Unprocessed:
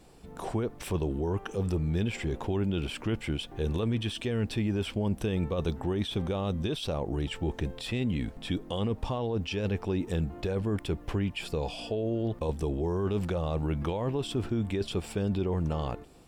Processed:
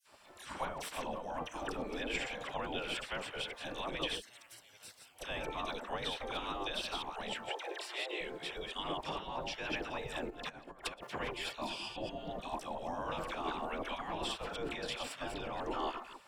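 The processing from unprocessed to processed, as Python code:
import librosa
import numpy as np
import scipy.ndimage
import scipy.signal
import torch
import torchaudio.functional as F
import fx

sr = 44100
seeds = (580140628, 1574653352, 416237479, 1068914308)

y = fx.reverse_delay(x, sr, ms=130, wet_db=-5.5)
y = fx.differentiator(y, sr, at=(4.14, 5.15))
y = fx.dispersion(y, sr, late='lows', ms=62.0, hz=1400.0)
y = fx.over_compress(y, sr, threshold_db=-36.0, ratio=-0.5, at=(10.3, 11.07))
y = fx.high_shelf(y, sr, hz=4600.0, db=-9.5)
y = fx.spec_gate(y, sr, threshold_db=-15, keep='weak')
y = fx.steep_highpass(y, sr, hz=320.0, slope=96, at=(7.49, 8.21))
y = y * librosa.db_to_amplitude(4.0)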